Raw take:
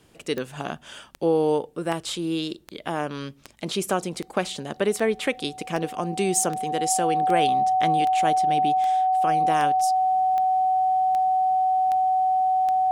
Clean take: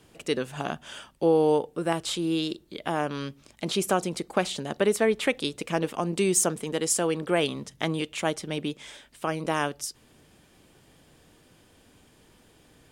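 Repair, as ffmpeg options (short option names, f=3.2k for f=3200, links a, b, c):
-af "adeclick=t=4,bandreject=f=750:w=30"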